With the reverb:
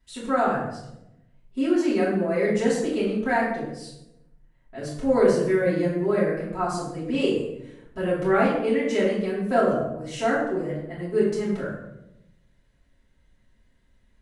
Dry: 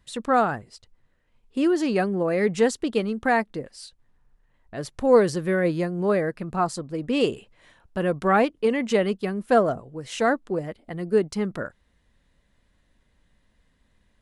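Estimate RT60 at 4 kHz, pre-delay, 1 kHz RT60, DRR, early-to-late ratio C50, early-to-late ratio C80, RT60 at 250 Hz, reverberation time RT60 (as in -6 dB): 0.55 s, 3 ms, 0.75 s, -10.5 dB, 2.5 dB, 5.5 dB, 1.3 s, 0.85 s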